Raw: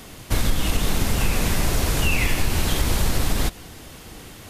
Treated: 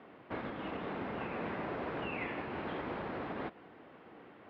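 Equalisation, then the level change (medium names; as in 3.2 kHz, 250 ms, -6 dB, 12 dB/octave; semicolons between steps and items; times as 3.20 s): band-pass 290–2000 Hz; distance through air 380 m; -7.0 dB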